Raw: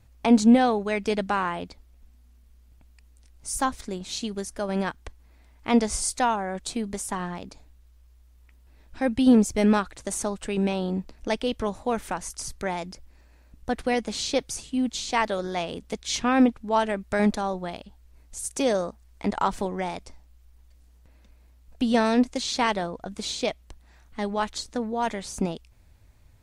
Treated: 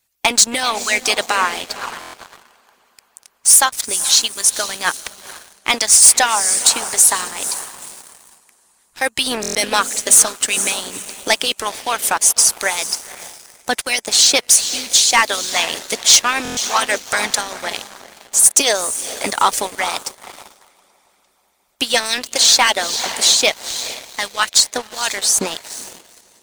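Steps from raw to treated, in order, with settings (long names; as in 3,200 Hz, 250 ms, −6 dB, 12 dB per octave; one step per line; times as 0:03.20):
spectral tilt +4.5 dB per octave
feedback delay with all-pass diffusion 476 ms, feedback 47%, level −9 dB
harmonic and percussive parts rebalanced harmonic −16 dB
leveller curve on the samples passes 3
buffer that repeats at 0:02.00/0:09.41/0:16.43, samples 1,024, times 5
level +2 dB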